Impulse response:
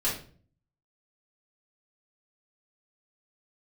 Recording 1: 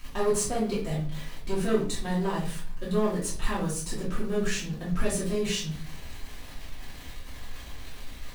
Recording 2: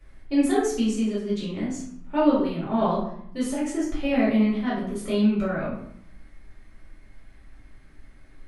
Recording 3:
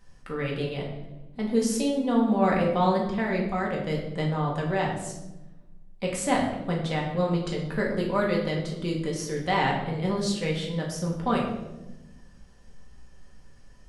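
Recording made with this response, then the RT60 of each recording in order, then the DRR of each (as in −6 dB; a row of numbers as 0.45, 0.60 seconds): 1; 0.45, 0.70, 1.0 seconds; −9.0, −9.0, −3.0 decibels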